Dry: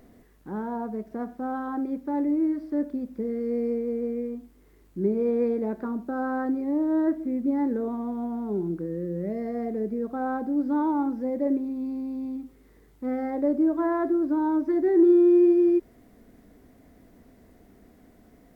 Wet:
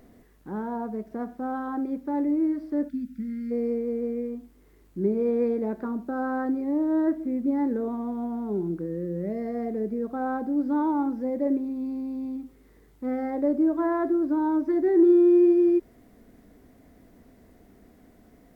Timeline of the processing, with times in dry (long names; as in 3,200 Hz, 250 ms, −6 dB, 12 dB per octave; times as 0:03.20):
0:02.88–0:03.51: gain on a spectral selection 280–1,300 Hz −25 dB